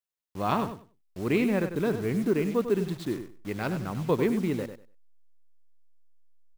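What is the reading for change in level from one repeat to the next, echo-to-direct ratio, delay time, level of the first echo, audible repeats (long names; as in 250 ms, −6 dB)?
−15.0 dB, −9.5 dB, 97 ms, −9.5 dB, 2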